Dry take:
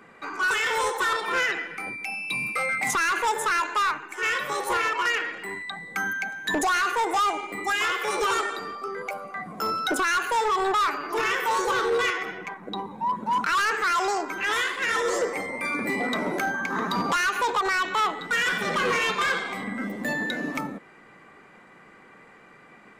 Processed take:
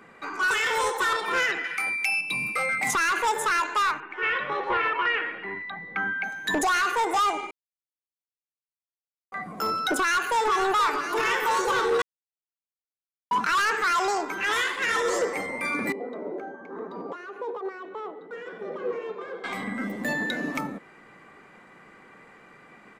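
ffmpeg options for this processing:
-filter_complex "[0:a]asettb=1/sr,asplit=3[s0][s1][s2];[s0]atrim=end=1.644[s3];[s1]atrim=start=1.64:end=2.21,asetpts=PTS-STARTPTS,afade=t=in:d=0.004:c=qsin,afade=t=out:st=0.566:d=0.004:c=qsin,tiltshelf=f=750:g=-9[s4];[s2]atrim=start=2.206[s5];[s3][s4]acrossfade=d=0.004:c1=hsin:c2=qsin[s6];[s6][s5]acrossfade=d=0.004:c1=qsin:c2=hsin,asettb=1/sr,asplit=3[s7][s8][s9];[s7]atrim=end=4.004[s10];[s8]atrim=start=4:end=6.24,asetpts=PTS-STARTPTS,afade=t=in:d=0.004:c=qsin,afade=t=out:st=2.236:d=0.004:c=qsin,lowpass=f=3100:w=0.5412,lowpass=f=3100:w=1.3066[s11];[s9]atrim=start=6.236[s12];[s10][s11]acrossfade=d=0.004:c1=hsin:c2=qsin[s13];[s13][s12]acrossfade=d=0.004:c1=qsin:c2=hsin,asplit=2[s14][s15];[s15]afade=t=in:st=9.97:d=0.01,afade=t=out:st=10.52:d=0.01,aecho=0:1:480|960|1440|1920|2400|2880|3360|3840|4320|4800|5280|5760:0.354813|0.283851|0.227081|0.181664|0.145332|0.116265|0.0930122|0.0744098|0.0595278|0.0476222|0.0380978|0.0304782[s16];[s14][s16]amix=inputs=2:normalize=0,asettb=1/sr,asplit=3[s17][s18][s19];[s17]atrim=end=15.924[s20];[s18]atrim=start=15.92:end=19.44,asetpts=PTS-STARTPTS,afade=t=in:d=0.004:c=qsin,afade=t=out:st=3.516:d=0.004:c=qsin,bandpass=f=440:t=q:w=2.6[s21];[s19]atrim=start=19.436[s22];[s20][s21]acrossfade=d=0.004:c1=hsin:c2=qsin[s23];[s23][s22]acrossfade=d=0.004:c1=qsin:c2=hsin,asplit=5[s24][s25][s26][s27][s28];[s24]atrim=end=7.51,asetpts=PTS-STARTPTS,afade=t=out:st=7.506:d=0.004:c=hsin[s29];[s25]atrim=start=7.51:end=9.32,asetpts=PTS-STARTPTS,volume=0[s30];[s26]atrim=start=9.32:end=12.02,asetpts=PTS-STARTPTS,afade=t=in:d=0.004:c=hsin,afade=t=out:st=2.696:d=0.004:c=hsin[s31];[s27]atrim=start=12.02:end=13.31,asetpts=PTS-STARTPTS,volume=0[s32];[s28]atrim=start=13.31,asetpts=PTS-STARTPTS,afade=t=in:d=0.004:c=hsin[s33];[s29][s30][s31][s32][s33]concat=n=5:v=0:a=1"

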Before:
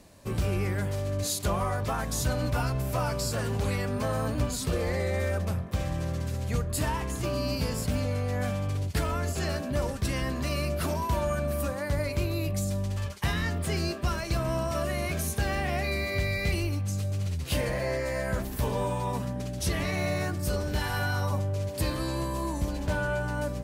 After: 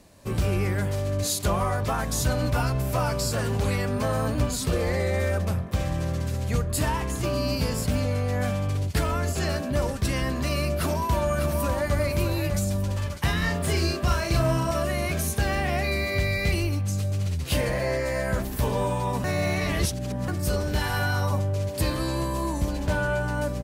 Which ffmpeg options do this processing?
-filter_complex "[0:a]asplit=2[s0][s1];[s1]afade=t=in:st=10.78:d=0.01,afade=t=out:st=11.97:d=0.01,aecho=0:1:600|1200|1800|2400|3000:0.501187|0.200475|0.08019|0.032076|0.0128304[s2];[s0][s2]amix=inputs=2:normalize=0,asettb=1/sr,asplit=3[s3][s4][s5];[s3]atrim=end=13.384[s6];[s4]atrim=start=13.38:end=14.71,asetpts=PTS-STARTPTS,afade=t=in:d=0.004:c=qsin,afade=t=out:st=1.326:d=0.004:c=qsin,asplit=2[s7][s8];[s8]adelay=39,volume=0.75[s9];[s7][s9]amix=inputs=2:normalize=0,atrim=end_sample=58653[s10];[s5]atrim=start=14.706[s11];[s6][s10]acrossfade=d=0.004:c1=hsin:c2=qsin[s12];[s12][s11]acrossfade=d=0.004:c1=qsin:c2=hsin,asplit=3[s13][s14][s15];[s13]atrim=end=19.242[s16];[s14]atrim=start=19.238:end=20.282,asetpts=PTS-STARTPTS,areverse[s17];[s15]atrim=start=20.278[s18];[s16][s17]acrossfade=d=0.004:c1=hsin:c2=hsin[s19];[s19][s18]acrossfade=d=0.004:c1=hsin:c2=hsin,dynaudnorm=f=160:g=3:m=1.5"

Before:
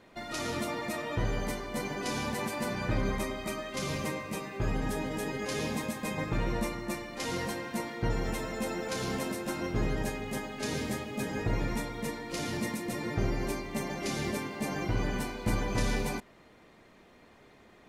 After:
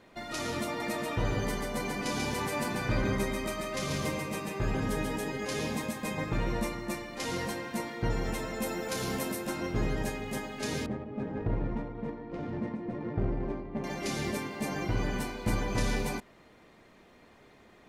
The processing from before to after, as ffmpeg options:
-filter_complex "[0:a]asettb=1/sr,asplit=3[s0][s1][s2];[s0]atrim=end=0.664[s3];[s1]atrim=start=0.66:end=5.16,asetpts=PTS-STARTPTS,afade=t=in:d=0.004:c=qsin,afade=t=out:st=4.496:d=0.004:c=qsin,aecho=1:1:138:0.668,atrim=end_sample=198450[s4];[s2]atrim=start=5.156[s5];[s3][s4]acrossfade=d=0.004:c1=hsin:c2=qsin[s6];[s6][s5]acrossfade=d=0.004:c1=qsin:c2=hsin,asettb=1/sr,asplit=3[s7][s8][s9];[s7]atrim=end=8.624[s10];[s8]atrim=start=8.62:end=9.47,asetpts=PTS-STARTPTS,afade=t=in:d=0.004:c=qsin,afade=t=out:st=0.846:d=0.004:c=qsin,equalizer=f=13000:t=o:w=0.74:g=8.5[s11];[s9]atrim=start=9.466[s12];[s10][s11]acrossfade=d=0.004:c1=hsin:c2=qsin[s13];[s13][s12]acrossfade=d=0.004:c1=qsin:c2=hsin,asettb=1/sr,asplit=3[s14][s15][s16];[s14]atrim=end=10.864[s17];[s15]atrim=start=10.86:end=13.84,asetpts=PTS-STARTPTS,afade=t=in:d=0.004:c=qsin,afade=t=out:st=2.976:d=0.004:c=qsin,adynamicsmooth=sensitivity=1:basefreq=840[s18];[s16]atrim=start=13.836[s19];[s17][s18]acrossfade=d=0.004:c1=hsin:c2=qsin[s20];[s20][s19]acrossfade=d=0.004:c1=qsin:c2=hsin"

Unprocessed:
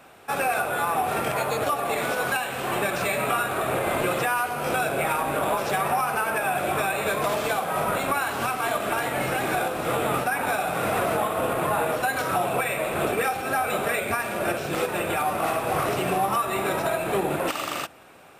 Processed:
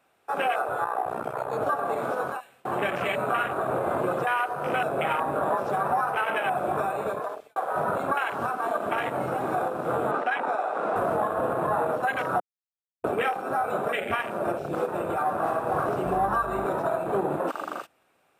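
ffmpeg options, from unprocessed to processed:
-filter_complex "[0:a]asettb=1/sr,asplit=3[s0][s1][s2];[s0]atrim=end=0.844[s3];[s1]atrim=start=0.84:end=1.53,asetpts=PTS-STARTPTS,afade=t=in:d=0.004:c=qsin,afade=t=out:st=0.686:d=0.004:c=qsin,tremolo=f=62:d=0.788[s4];[s2]atrim=start=1.526[s5];[s3][s4]acrossfade=d=0.004:c1=hsin:c2=qsin[s6];[s6][s5]acrossfade=d=0.004:c1=qsin:c2=hsin,asettb=1/sr,asplit=3[s7][s8][s9];[s7]atrim=end=10.114[s10];[s8]atrim=start=10.11:end=10.96,asetpts=PTS-STARTPTS,afade=t=in:d=0.004:c=qsin,afade=t=out:st=0.846:d=0.004:c=qsin,highpass=250,lowpass=6100[s11];[s9]atrim=start=10.956[s12];[s10][s11]acrossfade=d=0.004:c1=hsin:c2=qsin[s13];[s13][s12]acrossfade=d=0.004:c1=qsin:c2=hsin,asettb=1/sr,asplit=3[s14][s15][s16];[s14]atrim=end=16.054[s17];[s15]atrim=start=16.05:end=16.65,asetpts=PTS-STARTPTS,afade=t=in:d=0.004:c=qsin,afade=t=out:st=0.596:d=0.004:c=qsin,aeval=exprs='val(0)+0.0141*(sin(2*PI*50*n/s)+sin(2*PI*2*50*n/s)/2+sin(2*PI*3*50*n/s)/3+sin(2*PI*4*50*n/s)/4+sin(2*PI*5*50*n/s)/5)':c=same[s18];[s16]atrim=start=16.646[s19];[s17][s18]acrossfade=d=0.004:c1=hsin:c2=qsin[s20];[s20][s19]acrossfade=d=0.004:c1=qsin:c2=hsin,asplit=5[s21][s22][s23][s24][s25];[s21]atrim=end=2.65,asetpts=PTS-STARTPTS,afade=t=out:st=2.2:d=0.45:silence=0.0891251[s26];[s22]atrim=start=2.65:end=7.56,asetpts=PTS-STARTPTS,afade=t=in:d=0.004:c=hsin:silence=0.0891251,afade=t=out:st=4.36:d=0.55[s27];[s23]atrim=start=7.56:end=12.4,asetpts=PTS-STARTPTS,afade=t=in:d=0.004:c=hsin,afade=t=out:st=4.836:d=0.004:c=hsin[s28];[s24]atrim=start=12.4:end=13.04,asetpts=PTS-STARTPTS,volume=0[s29];[s25]atrim=start=13.04,asetpts=PTS-STARTPTS,afade=t=in:d=0.004:c=hsin[s30];[s26][s27][s28][s29][s30]concat=n=5:v=0:a=1,afwtdn=0.0562,lowshelf=f=210:g=-4.5"

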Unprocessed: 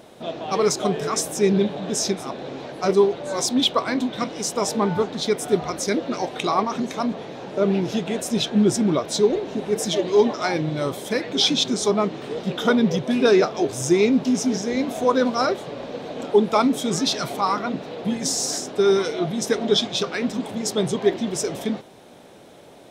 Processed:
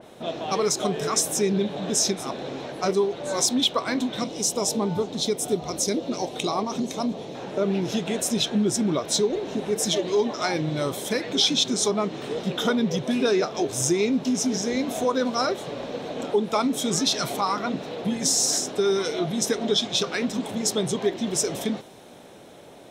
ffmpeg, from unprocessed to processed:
-filter_complex "[0:a]asettb=1/sr,asplit=3[s0][s1][s2];[s0]atrim=end=4.204[s3];[s1]atrim=start=4.2:end=7.35,asetpts=PTS-STARTPTS,afade=t=in:d=0.004:c=qsin,afade=t=out:st=3.146:d=0.004:c=qsin,equalizer=f=1600:w=1.1:g=-10[s4];[s2]atrim=start=7.346[s5];[s3][s4]acrossfade=d=0.004:c1=hsin:c2=qsin[s6];[s6][s5]acrossfade=d=0.004:c1=qsin:c2=hsin,bandreject=f=4700:w=15,acompressor=threshold=0.0708:ratio=2,adynamicequalizer=threshold=0.00891:dfrequency=3300:dqfactor=0.7:tfrequency=3300:tqfactor=0.7:attack=5:release=100:ratio=0.375:range=2.5:mode=boostabove:tftype=highshelf"

